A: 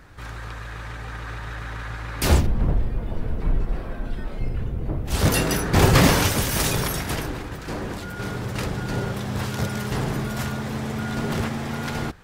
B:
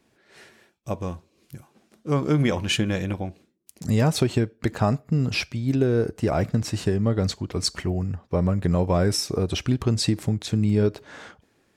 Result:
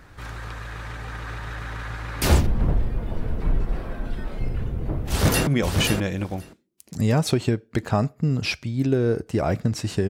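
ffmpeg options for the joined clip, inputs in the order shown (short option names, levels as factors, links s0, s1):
-filter_complex "[0:a]apad=whole_dur=10.09,atrim=end=10.09,atrim=end=5.472[s0];[1:a]atrim=start=2.358:end=6.98[s1];[s0][s1]acrossfade=d=0.004:c1=hsin:c2=hsin,asplit=2[s2][s3];[s3]afade=t=in:st=5.09:d=0.01,afade=t=out:st=5.47:d=0.01,aecho=0:1:530|1060:0.562341|0.0562341[s4];[s2][s4]amix=inputs=2:normalize=0"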